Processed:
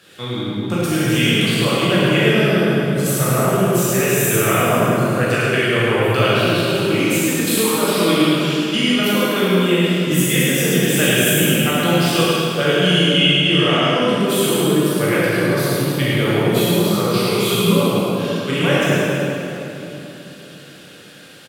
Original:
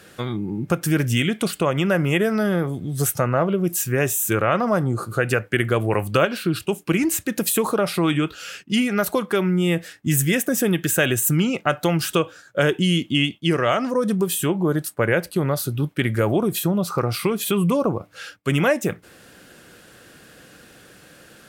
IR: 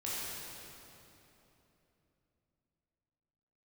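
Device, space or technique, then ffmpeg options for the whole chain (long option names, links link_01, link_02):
PA in a hall: -filter_complex "[0:a]highpass=120,equalizer=frequency=3400:width_type=o:width=1:gain=8,aecho=1:1:105:0.562[link_01];[1:a]atrim=start_sample=2205[link_02];[link_01][link_02]afir=irnorm=-1:irlink=0,volume=-1dB"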